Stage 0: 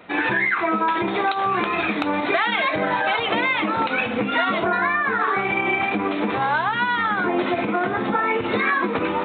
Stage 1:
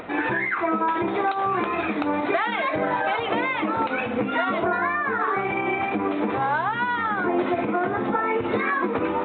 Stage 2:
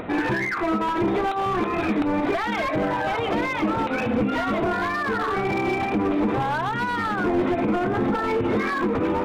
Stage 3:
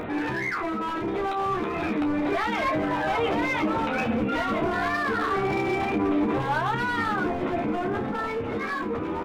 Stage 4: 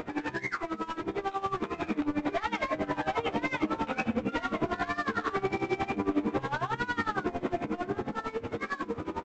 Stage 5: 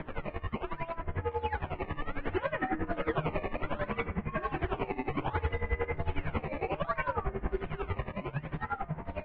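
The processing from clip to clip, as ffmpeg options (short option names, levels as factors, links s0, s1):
-af "lowpass=f=1300:p=1,equalizer=f=180:w=4.4:g=-6.5,acompressor=mode=upward:threshold=0.0355:ratio=2.5"
-filter_complex "[0:a]asplit=2[s0][s1];[s1]alimiter=limit=0.15:level=0:latency=1:release=268,volume=1.41[s2];[s0][s2]amix=inputs=2:normalize=0,asoftclip=type=hard:threshold=0.178,lowshelf=f=380:g=9.5,volume=0.422"
-filter_complex "[0:a]alimiter=limit=0.0631:level=0:latency=1:release=18,dynaudnorm=f=580:g=7:m=1.5,asplit=2[s0][s1];[s1]aecho=0:1:13|30:0.531|0.355[s2];[s0][s2]amix=inputs=2:normalize=0"
-af "aresample=16000,aeval=exprs='sgn(val(0))*max(abs(val(0))-0.00501,0)':c=same,aresample=44100,aeval=exprs='val(0)*pow(10,-18*(0.5-0.5*cos(2*PI*11*n/s))/20)':c=same"
-af "acrusher=samples=14:mix=1:aa=0.000001:lfo=1:lforange=22.4:lforate=0.65,highpass=f=290:t=q:w=0.5412,highpass=f=290:t=q:w=1.307,lowpass=f=2900:t=q:w=0.5176,lowpass=f=2900:t=q:w=0.7071,lowpass=f=2900:t=q:w=1.932,afreqshift=-310,bandreject=f=305:t=h:w=4,bandreject=f=610:t=h:w=4,bandreject=f=915:t=h:w=4,bandreject=f=1220:t=h:w=4,bandreject=f=1525:t=h:w=4,bandreject=f=1830:t=h:w=4,bandreject=f=2135:t=h:w=4,bandreject=f=2440:t=h:w=4,bandreject=f=2745:t=h:w=4,bandreject=f=3050:t=h:w=4,bandreject=f=3355:t=h:w=4,bandreject=f=3660:t=h:w=4,bandreject=f=3965:t=h:w=4,bandreject=f=4270:t=h:w=4,bandreject=f=4575:t=h:w=4,bandreject=f=4880:t=h:w=4,bandreject=f=5185:t=h:w=4,bandreject=f=5490:t=h:w=4,bandreject=f=5795:t=h:w=4,bandreject=f=6100:t=h:w=4,bandreject=f=6405:t=h:w=4,bandreject=f=6710:t=h:w=4,bandreject=f=7015:t=h:w=4,bandreject=f=7320:t=h:w=4,bandreject=f=7625:t=h:w=4,bandreject=f=7930:t=h:w=4,bandreject=f=8235:t=h:w=4,bandreject=f=8540:t=h:w=4,bandreject=f=8845:t=h:w=4,bandreject=f=9150:t=h:w=4,bandreject=f=9455:t=h:w=4,bandreject=f=9760:t=h:w=4,bandreject=f=10065:t=h:w=4,bandreject=f=10370:t=h:w=4,bandreject=f=10675:t=h:w=4,bandreject=f=10980:t=h:w=4,bandreject=f=11285:t=h:w=4,bandreject=f=11590:t=h:w=4"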